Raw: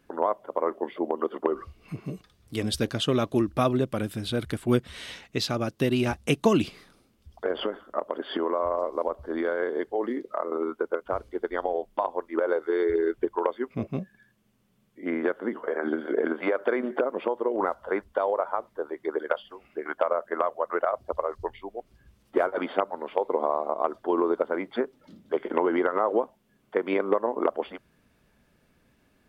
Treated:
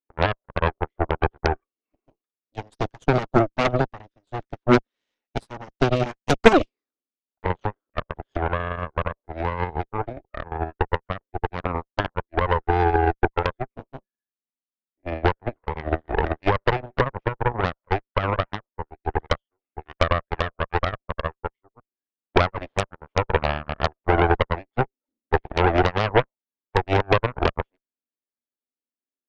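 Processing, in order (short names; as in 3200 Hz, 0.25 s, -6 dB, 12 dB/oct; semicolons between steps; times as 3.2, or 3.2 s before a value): brick-wall FIR band-pass 220–6700 Hz; tilt shelf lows +4.5 dB, about 880 Hz; added harmonics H 5 -17 dB, 7 -17 dB, 8 -7 dB, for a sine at -6.5 dBFS; upward expander 2.5:1, over -37 dBFS; gain +4.5 dB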